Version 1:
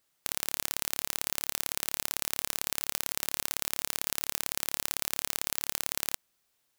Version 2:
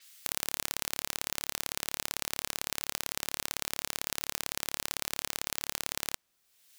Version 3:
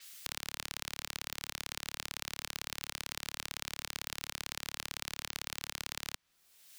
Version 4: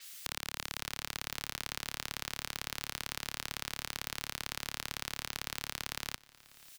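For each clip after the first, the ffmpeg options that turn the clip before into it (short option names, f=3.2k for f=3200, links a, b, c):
-filter_complex "[0:a]acrossover=split=1800[a][b];[b]acompressor=mode=upward:threshold=-38dB:ratio=2.5[c];[a][c]amix=inputs=2:normalize=0,adynamicequalizer=threshold=0.00316:dfrequency=7600:dqfactor=0.7:tfrequency=7600:tqfactor=0.7:attack=5:release=100:ratio=0.375:range=2.5:mode=cutabove:tftype=highshelf"
-filter_complex "[0:a]acrossover=split=210|1000|5600[a][b][c][d];[a]acompressor=threshold=-52dB:ratio=4[e];[b]acompressor=threshold=-59dB:ratio=4[f];[c]acompressor=threshold=-41dB:ratio=4[g];[d]acompressor=threshold=-47dB:ratio=4[h];[e][f][g][h]amix=inputs=4:normalize=0,volume=4dB"
-filter_complex "[0:a]asplit=2[a][b];[b]aeval=exprs='0.0376*(abs(mod(val(0)/0.0376+3,4)-2)-1)':c=same,volume=-9dB[c];[a][c]amix=inputs=2:normalize=0,aecho=1:1:540|1080|1620:0.0794|0.031|0.0121"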